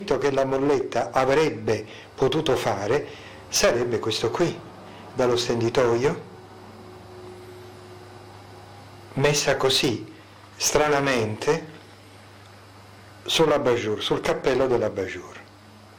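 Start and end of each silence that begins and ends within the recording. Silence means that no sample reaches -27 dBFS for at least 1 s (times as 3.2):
6.17–9.17
11.62–13.26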